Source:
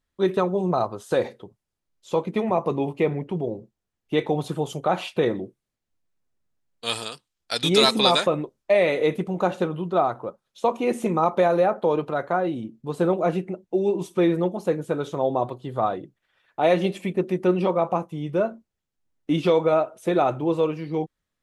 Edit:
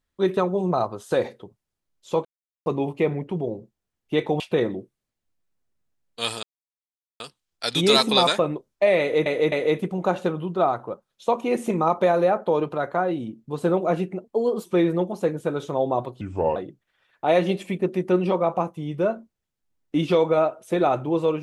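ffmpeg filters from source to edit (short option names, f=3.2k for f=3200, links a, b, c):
-filter_complex "[0:a]asplit=11[a][b][c][d][e][f][g][h][i][j][k];[a]atrim=end=2.25,asetpts=PTS-STARTPTS,afade=t=out:st=2.246:d=0.004:c=hsin[l];[b]atrim=start=2.25:end=2.66,asetpts=PTS-STARTPTS,volume=0[m];[c]atrim=start=2.66:end=4.402,asetpts=PTS-STARTPTS,afade=t=in:d=0.004:c=hsin[n];[d]atrim=start=5.048:end=7.08,asetpts=PTS-STARTPTS,afade=t=out:st=2.028:d=0.004:c=hsin,apad=pad_dur=0.77[o];[e]atrim=start=7.08:end=9.142,asetpts=PTS-STARTPTS,afade=t=in:d=0.004:c=hsin[p];[f]atrim=start=8.878:end=9.142[q];[g]atrim=start=8.878:end=13.604[r];[h]atrim=start=13.6:end=14.09,asetpts=PTS-STARTPTS,asetrate=52920,aresample=44100[s];[i]atrim=start=14.086:end=15.654[t];[j]atrim=start=15.65:end=15.91,asetpts=PTS-STARTPTS,asetrate=32634,aresample=44100[u];[k]atrim=start=15.906[v];[l][m][n]concat=n=3:v=0:a=1[w];[o][p]concat=n=2:v=0:a=1[x];[w][x]acrossfade=d=0.004:c1=hsin:c2=hsin[y];[y][q]acrossfade=d=0.004:c1=hsin:c2=hsin[z];[z][r]acrossfade=d=0.004:c1=hsin:c2=hsin[aa];[aa][s]acrossfade=d=0.004:c1=hsin:c2=hsin[ab];[ab][t]acrossfade=d=0.004:c1=hsin:c2=hsin[ac];[ac][u]acrossfade=d=0.004:c1=hsin:c2=hsin[ad];[ad][v]acrossfade=d=0.004:c1=hsin:c2=hsin"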